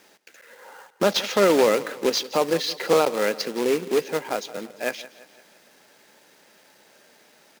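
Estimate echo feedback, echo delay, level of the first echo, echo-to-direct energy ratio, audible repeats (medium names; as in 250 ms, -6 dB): 50%, 171 ms, -17.5 dB, -16.5 dB, 3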